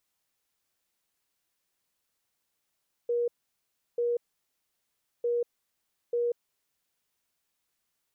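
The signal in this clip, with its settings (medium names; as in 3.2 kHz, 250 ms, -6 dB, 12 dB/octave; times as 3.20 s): beep pattern sine 477 Hz, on 0.19 s, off 0.70 s, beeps 2, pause 1.07 s, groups 2, -24.5 dBFS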